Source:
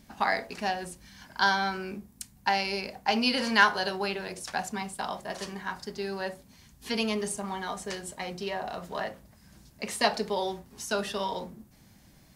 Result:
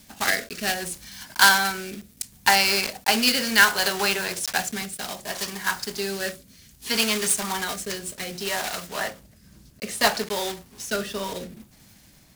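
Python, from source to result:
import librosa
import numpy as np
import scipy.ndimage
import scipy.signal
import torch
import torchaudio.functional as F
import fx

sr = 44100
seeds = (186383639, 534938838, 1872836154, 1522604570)

y = fx.block_float(x, sr, bits=3)
y = fx.high_shelf(y, sr, hz=2200.0, db=fx.steps((0.0, 9.5), (8.83, 3.5)))
y = fx.rotary(y, sr, hz=0.65)
y = fx.dynamic_eq(y, sr, hz=1500.0, q=1.5, threshold_db=-42.0, ratio=4.0, max_db=5)
y = y * librosa.db_to_amplitude(4.0)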